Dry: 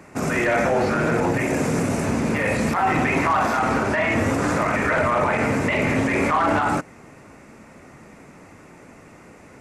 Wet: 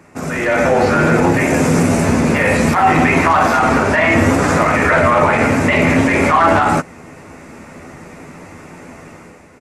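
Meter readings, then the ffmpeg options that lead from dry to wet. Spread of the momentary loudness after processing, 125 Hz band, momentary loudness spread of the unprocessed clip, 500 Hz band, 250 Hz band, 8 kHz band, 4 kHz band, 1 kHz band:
3 LU, +8.0 dB, 3 LU, +7.5 dB, +8.0 dB, +8.0 dB, +7.5 dB, +8.0 dB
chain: -filter_complex "[0:a]dynaudnorm=framelen=120:gausssize=9:maxgain=10dB,asplit=2[link_01][link_02];[link_02]adelay=12,volume=-7dB[link_03];[link_01][link_03]amix=inputs=2:normalize=0,volume=-1dB"

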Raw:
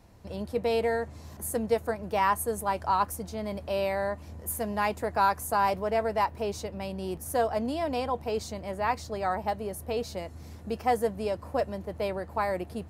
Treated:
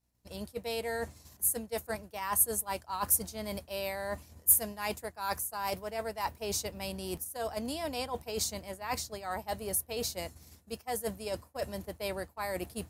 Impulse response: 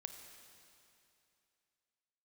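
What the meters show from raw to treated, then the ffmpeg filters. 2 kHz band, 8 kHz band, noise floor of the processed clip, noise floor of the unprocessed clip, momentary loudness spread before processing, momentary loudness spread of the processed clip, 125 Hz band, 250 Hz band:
−5.0 dB, +8.5 dB, −62 dBFS, −46 dBFS, 9 LU, 12 LU, −6.5 dB, −7.0 dB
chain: -af "aeval=exprs='val(0)+0.00316*(sin(2*PI*60*n/s)+sin(2*PI*2*60*n/s)/2+sin(2*PI*3*60*n/s)/3+sin(2*PI*4*60*n/s)/4+sin(2*PI*5*60*n/s)/5)':channel_layout=same,areverse,acompressor=threshold=-32dB:ratio=16,areverse,agate=range=-33dB:threshold=-33dB:ratio=3:detection=peak,crystalizer=i=5:c=0"

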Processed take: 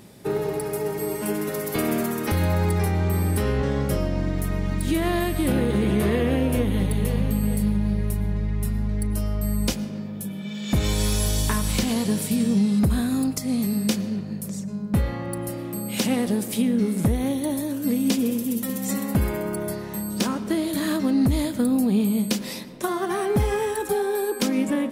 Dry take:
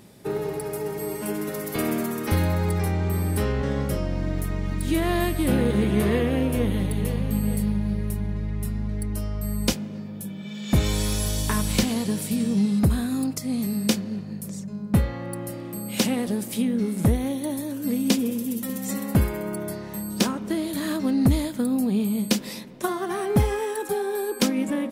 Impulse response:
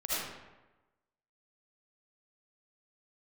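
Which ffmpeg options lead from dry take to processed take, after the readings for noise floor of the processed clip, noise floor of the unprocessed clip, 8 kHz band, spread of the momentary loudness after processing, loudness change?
−33 dBFS, −36 dBFS, +1.0 dB, 7 LU, +1.0 dB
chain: -filter_complex "[0:a]alimiter=limit=-15.5dB:level=0:latency=1:release=97,asplit=2[link_01][link_02];[1:a]atrim=start_sample=2205,adelay=37[link_03];[link_02][link_03]afir=irnorm=-1:irlink=0,volume=-23.5dB[link_04];[link_01][link_04]amix=inputs=2:normalize=0,volume=2.5dB"

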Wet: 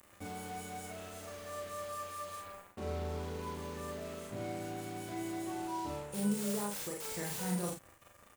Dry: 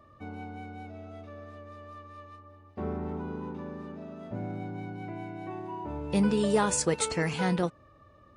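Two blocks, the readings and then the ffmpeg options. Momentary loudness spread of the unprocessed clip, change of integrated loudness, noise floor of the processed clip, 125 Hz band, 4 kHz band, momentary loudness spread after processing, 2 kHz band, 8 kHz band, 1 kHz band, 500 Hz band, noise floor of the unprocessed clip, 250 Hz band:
21 LU, −8.0 dB, −61 dBFS, −7.5 dB, −6.5 dB, 11 LU, −8.5 dB, −6.5 dB, −5.0 dB, −8.0 dB, −58 dBFS, −7.5 dB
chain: -filter_complex "[0:a]aemphasis=mode=production:type=50fm,acrossover=split=5600[link_01][link_02];[link_02]acompressor=threshold=-34dB:ratio=4:attack=1:release=60[link_03];[link_01][link_03]amix=inputs=2:normalize=0,highshelf=frequency=5800:width_type=q:width=3:gain=10.5,areverse,acompressor=threshold=-39dB:ratio=4,areverse,aeval=exprs='val(0)+0.000708*sin(2*PI*550*n/s)':channel_layout=same,acrossover=split=1700[link_04][link_05];[link_05]aeval=exprs='(mod(94.4*val(0)+1,2)-1)/94.4':channel_layout=same[link_06];[link_04][link_06]amix=inputs=2:normalize=0,acrusher=bits=7:mix=0:aa=0.5,asplit=2[link_07][link_08];[link_08]adelay=39,volume=-4dB[link_09];[link_07][link_09]amix=inputs=2:normalize=0,aecho=1:1:34|49:0.447|0.531" -ar 44100 -c:a libvorbis -b:a 128k

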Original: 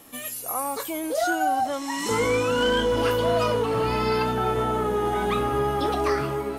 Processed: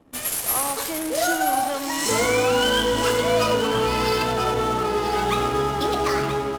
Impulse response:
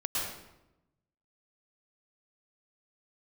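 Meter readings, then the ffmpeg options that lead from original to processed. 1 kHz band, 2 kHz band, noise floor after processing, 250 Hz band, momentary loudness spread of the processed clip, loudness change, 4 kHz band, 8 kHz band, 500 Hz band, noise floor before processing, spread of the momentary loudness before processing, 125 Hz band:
+2.0 dB, +4.0 dB, −30 dBFS, +1.5 dB, 5 LU, +2.5 dB, +6.5 dB, +8.5 dB, +1.5 dB, −35 dBFS, 6 LU, 0.0 dB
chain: -filter_complex "[0:a]aemphasis=mode=production:type=75kf,aecho=1:1:95|190|285|380|475|570:0.282|0.149|0.0792|0.042|0.0222|0.0118,asplit=2[link_01][link_02];[1:a]atrim=start_sample=2205[link_03];[link_02][link_03]afir=irnorm=-1:irlink=0,volume=-25.5dB[link_04];[link_01][link_04]amix=inputs=2:normalize=0,adynamicsmooth=sensitivity=7.5:basefreq=550,asplit=2[link_05][link_06];[link_06]aecho=0:1:978:0.376[link_07];[link_05][link_07]amix=inputs=2:normalize=0"

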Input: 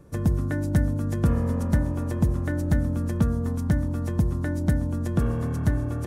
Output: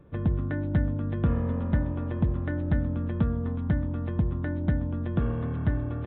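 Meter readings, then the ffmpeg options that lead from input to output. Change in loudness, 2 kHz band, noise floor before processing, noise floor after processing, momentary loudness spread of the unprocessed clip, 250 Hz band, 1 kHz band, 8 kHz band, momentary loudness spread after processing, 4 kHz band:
−3.0 dB, −3.0 dB, −28 dBFS, −31 dBFS, 3 LU, −3.0 dB, −3.0 dB, below −35 dB, 2 LU, can't be measured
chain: -af "aresample=8000,aresample=44100,volume=-3dB"

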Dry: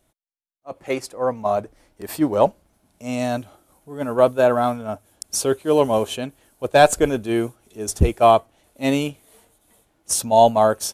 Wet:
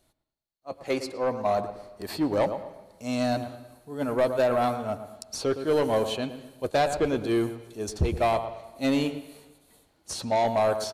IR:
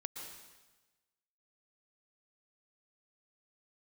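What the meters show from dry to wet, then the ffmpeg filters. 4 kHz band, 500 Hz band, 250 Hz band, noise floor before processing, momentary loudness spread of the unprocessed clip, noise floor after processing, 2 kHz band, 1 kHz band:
−5.0 dB, −7.0 dB, −4.5 dB, −67 dBFS, 17 LU, −69 dBFS, −6.5 dB, −8.5 dB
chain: -filter_complex "[0:a]equalizer=frequency=4300:width=5.4:gain=11.5,acrossover=split=3200|6500[link_01][link_02][link_03];[link_01]acompressor=threshold=-14dB:ratio=4[link_04];[link_02]acompressor=threshold=-38dB:ratio=4[link_05];[link_03]acompressor=threshold=-46dB:ratio=4[link_06];[link_04][link_05][link_06]amix=inputs=3:normalize=0,asplit=2[link_07][link_08];[link_08]adelay=113,lowpass=frequency=1700:poles=1,volume=-11dB,asplit=2[link_09][link_10];[link_10]adelay=113,lowpass=frequency=1700:poles=1,volume=0.31,asplit=2[link_11][link_12];[link_12]adelay=113,lowpass=frequency=1700:poles=1,volume=0.31[link_13];[link_07][link_09][link_11][link_13]amix=inputs=4:normalize=0,asoftclip=type=tanh:threshold=-14.5dB,asplit=2[link_14][link_15];[1:a]atrim=start_sample=2205,lowpass=4900,adelay=11[link_16];[link_15][link_16]afir=irnorm=-1:irlink=0,volume=-11dB[link_17];[link_14][link_17]amix=inputs=2:normalize=0,volume=-2.5dB"

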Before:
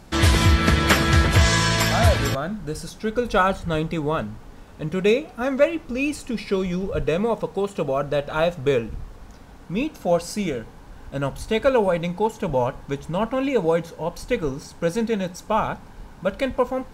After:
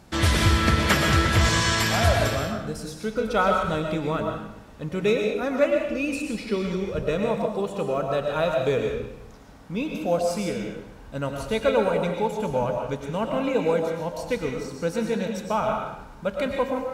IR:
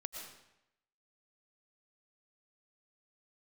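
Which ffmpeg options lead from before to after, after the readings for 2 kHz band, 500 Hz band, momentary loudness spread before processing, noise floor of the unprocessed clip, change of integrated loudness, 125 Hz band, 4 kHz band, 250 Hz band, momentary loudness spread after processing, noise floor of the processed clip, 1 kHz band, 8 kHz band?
−2.0 dB, −1.5 dB, 12 LU, −44 dBFS, −2.0 dB, −3.5 dB, −1.5 dB, −2.5 dB, 11 LU, −45 dBFS, −1.5 dB, −2.0 dB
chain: -filter_complex "[0:a]highpass=44[link_01];[1:a]atrim=start_sample=2205[link_02];[link_01][link_02]afir=irnorm=-1:irlink=0"

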